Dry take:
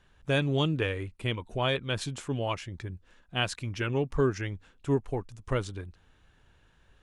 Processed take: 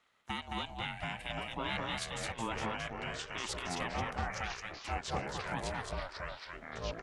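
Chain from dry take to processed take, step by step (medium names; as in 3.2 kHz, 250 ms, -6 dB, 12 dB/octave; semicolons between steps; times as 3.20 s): high-pass 490 Hz 24 dB/octave; gain riding 2 s; peak limiter -24.5 dBFS, peak gain reduction 11 dB; ring modulator 340 Hz; delay 218 ms -3.5 dB; ever faster or slower copies 651 ms, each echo -4 st, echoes 3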